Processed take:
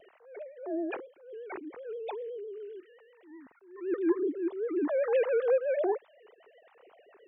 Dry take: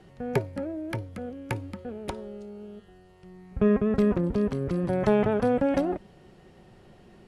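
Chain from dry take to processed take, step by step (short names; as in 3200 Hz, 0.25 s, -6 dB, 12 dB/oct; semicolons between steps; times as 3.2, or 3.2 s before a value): sine-wave speech; vibrato 7.8 Hz 97 cents; attack slew limiter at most 110 dB/s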